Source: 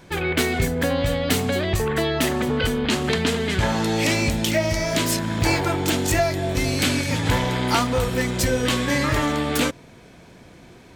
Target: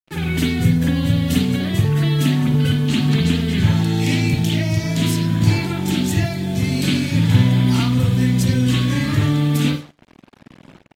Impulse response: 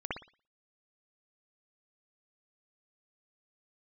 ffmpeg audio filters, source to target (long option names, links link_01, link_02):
-filter_complex "[0:a]aeval=exprs='sgn(val(0))*max(abs(val(0))-0.00531,0)':channel_layout=same,highpass=frequency=110:width=0.5412,highpass=frequency=110:width=1.3066[link_01];[1:a]atrim=start_sample=2205,asetrate=52920,aresample=44100[link_02];[link_01][link_02]afir=irnorm=-1:irlink=0,acrossover=split=170|3000[link_03][link_04][link_05];[link_04]acompressor=threshold=-38dB:ratio=2.5[link_06];[link_03][link_06][link_05]amix=inputs=3:normalize=0,lowshelf=frequency=360:width_type=q:width=1.5:gain=8,acrusher=bits=6:mix=0:aa=0.5,aecho=1:1:93:0.0708,volume=2dB" -ar 44100 -c:a aac -b:a 48k